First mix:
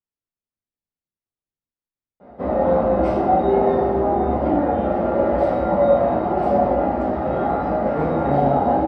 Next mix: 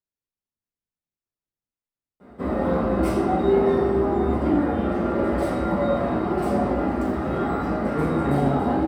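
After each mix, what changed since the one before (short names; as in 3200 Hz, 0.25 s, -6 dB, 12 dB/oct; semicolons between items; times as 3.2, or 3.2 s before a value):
background: add band shelf 670 Hz -9 dB 1 oct; master: remove air absorption 160 m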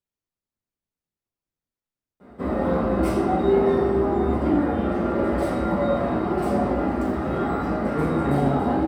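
speech +5.0 dB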